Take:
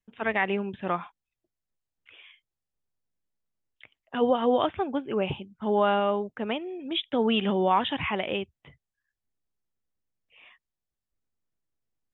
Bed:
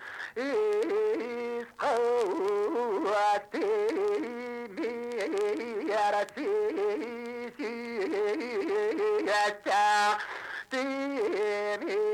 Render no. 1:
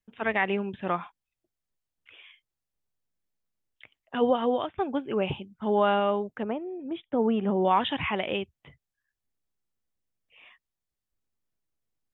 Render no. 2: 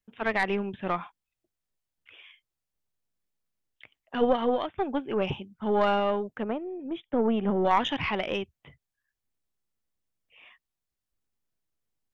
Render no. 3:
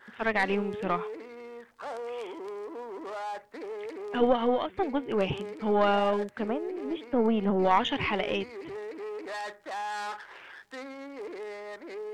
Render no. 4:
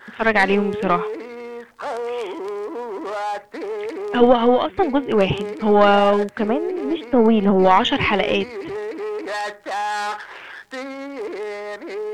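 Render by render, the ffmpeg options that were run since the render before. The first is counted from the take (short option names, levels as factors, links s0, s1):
-filter_complex "[0:a]asettb=1/sr,asplit=3[s0][s1][s2];[s0]atrim=end=6.434[s3];[s1]atrim=start=6.43:end=7.65,asetpts=PTS-STARTPTS,afade=t=in:d=0.004:c=qsin,afade=t=out:st=1.216:d=0.004:c=qsin,lowpass=1100[s4];[s2]atrim=start=7.646[s5];[s3][s4]acrossfade=d=0.004:c1=hsin:c2=qsin[s6];[s6][s5]acrossfade=d=0.004:c1=qsin:c2=hsin,asplit=2[s7][s8];[s7]atrim=end=4.78,asetpts=PTS-STARTPTS,afade=t=out:st=4.22:d=0.56:c=qsin:silence=0.133352[s9];[s8]atrim=start=4.78,asetpts=PTS-STARTPTS,afade=t=in:d=0.004:c=hsin:silence=0.133352[s10];[s9][s10]concat=n=2:v=0:a=1"
-af "aeval=exprs='0.282*(cos(1*acos(clip(val(0)/0.282,-1,1)))-cos(1*PI/2))+0.1*(cos(2*acos(clip(val(0)/0.282,-1,1)))-cos(2*PI/2))+0.0224*(cos(4*acos(clip(val(0)/0.282,-1,1)))-cos(4*PI/2))+0.0112*(cos(6*acos(clip(val(0)/0.282,-1,1)))-cos(6*PI/2))':c=same"
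-filter_complex "[1:a]volume=0.316[s0];[0:a][s0]amix=inputs=2:normalize=0"
-af "volume=3.35,alimiter=limit=0.891:level=0:latency=1"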